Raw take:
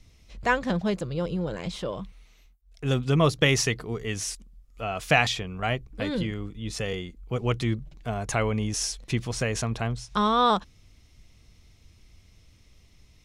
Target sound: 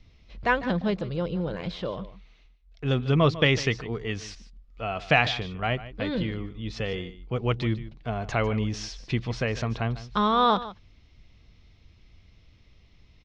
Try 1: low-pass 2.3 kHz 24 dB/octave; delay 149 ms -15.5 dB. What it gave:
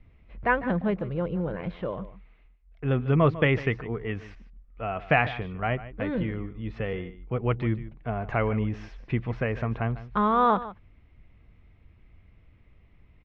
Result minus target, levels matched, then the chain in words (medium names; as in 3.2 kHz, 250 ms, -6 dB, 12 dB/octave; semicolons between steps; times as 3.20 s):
4 kHz band -11.5 dB
low-pass 4.6 kHz 24 dB/octave; delay 149 ms -15.5 dB